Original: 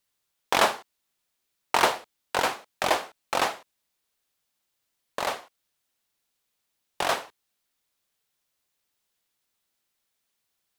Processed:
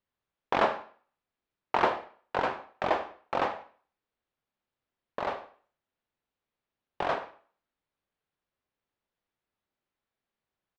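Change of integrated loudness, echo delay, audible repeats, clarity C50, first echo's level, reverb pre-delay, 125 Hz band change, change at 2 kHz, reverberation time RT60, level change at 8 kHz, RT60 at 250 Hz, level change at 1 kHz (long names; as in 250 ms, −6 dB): −4.5 dB, 100 ms, 1, 13.0 dB, −20.5 dB, 29 ms, −0.5 dB, −6.0 dB, 0.45 s, below −20 dB, 0.40 s, −3.0 dB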